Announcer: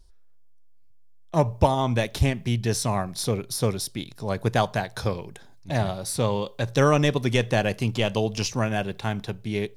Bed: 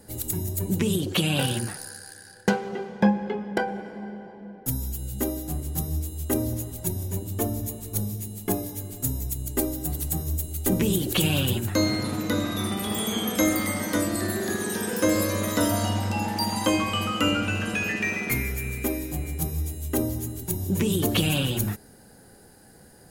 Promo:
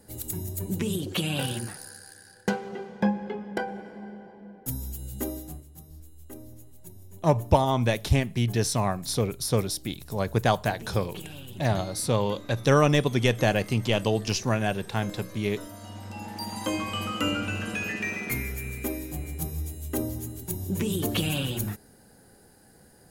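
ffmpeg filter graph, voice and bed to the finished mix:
ffmpeg -i stem1.wav -i stem2.wav -filter_complex "[0:a]adelay=5900,volume=-0.5dB[link_01];[1:a]volume=10.5dB,afade=type=out:start_time=5.36:duration=0.3:silence=0.188365,afade=type=in:start_time=15.79:duration=1.3:silence=0.177828[link_02];[link_01][link_02]amix=inputs=2:normalize=0" out.wav

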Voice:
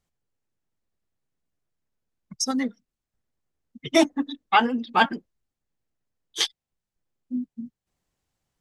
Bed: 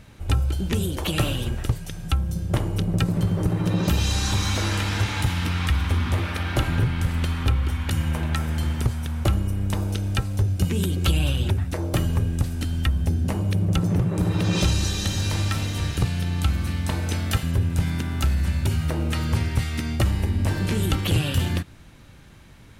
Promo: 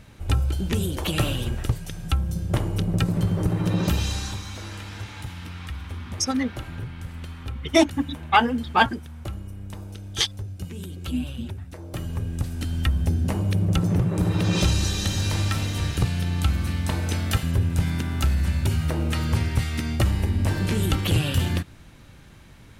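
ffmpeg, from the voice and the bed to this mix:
ffmpeg -i stem1.wav -i stem2.wav -filter_complex "[0:a]adelay=3800,volume=1dB[link_01];[1:a]volume=11.5dB,afade=type=out:start_time=3.84:duration=0.59:silence=0.266073,afade=type=in:start_time=11.84:duration=1.08:silence=0.251189[link_02];[link_01][link_02]amix=inputs=2:normalize=0" out.wav

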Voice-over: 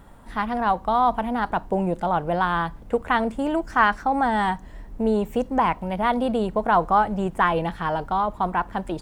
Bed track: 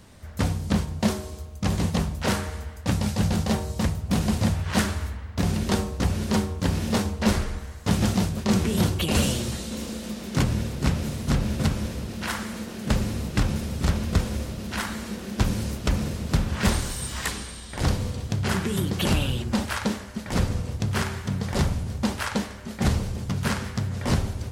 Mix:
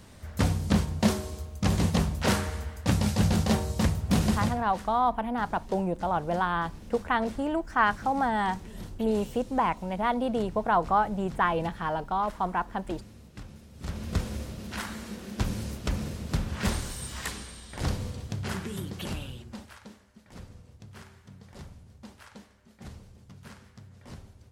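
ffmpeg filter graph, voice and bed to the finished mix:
ffmpeg -i stem1.wav -i stem2.wav -filter_complex "[0:a]adelay=4000,volume=-5dB[link_01];[1:a]volume=14.5dB,afade=type=out:start_time=4.25:duration=0.44:silence=0.0944061,afade=type=in:start_time=13.73:duration=0.44:silence=0.177828,afade=type=out:start_time=18.05:duration=1.74:silence=0.158489[link_02];[link_01][link_02]amix=inputs=2:normalize=0" out.wav

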